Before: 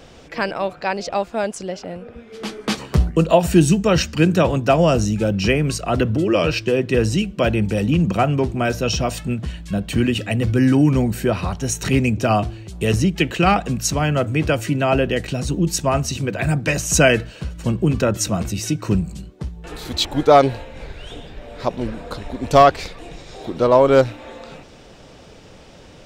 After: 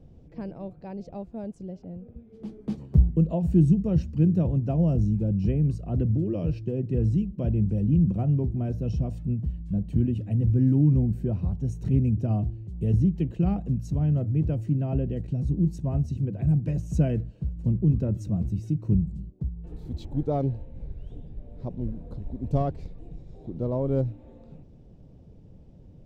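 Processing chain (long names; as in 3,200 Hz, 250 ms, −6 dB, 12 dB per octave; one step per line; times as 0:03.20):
drawn EQ curve 150 Hz 0 dB, 880 Hz −21 dB, 1,300 Hz −30 dB
level −1.5 dB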